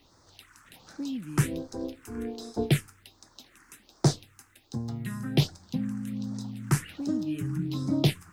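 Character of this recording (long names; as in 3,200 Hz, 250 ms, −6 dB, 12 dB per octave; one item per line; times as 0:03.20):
a quantiser's noise floor 12 bits, dither none
phaser sweep stages 4, 1.3 Hz, lowest notch 590–2,800 Hz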